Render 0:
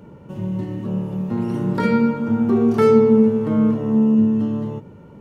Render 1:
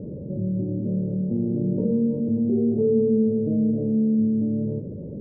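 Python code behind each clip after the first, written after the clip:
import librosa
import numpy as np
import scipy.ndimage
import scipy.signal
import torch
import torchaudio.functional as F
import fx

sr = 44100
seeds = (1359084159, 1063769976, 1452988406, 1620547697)

y = scipy.signal.sosfilt(scipy.signal.ellip(4, 1.0, 50, 580.0, 'lowpass', fs=sr, output='sos'), x)
y = fx.env_flatten(y, sr, amount_pct=50)
y = y * librosa.db_to_amplitude(-7.5)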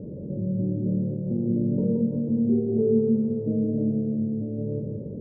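y = fx.echo_feedback(x, sr, ms=171, feedback_pct=49, wet_db=-4.5)
y = y * librosa.db_to_amplitude(-2.5)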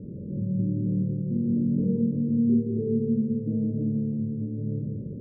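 y = scipy.signal.lfilter(np.full(58, 1.0 / 58), 1.0, x)
y = fx.doubler(y, sr, ms=47.0, db=-5)
y = y * librosa.db_to_amplitude(-1.0)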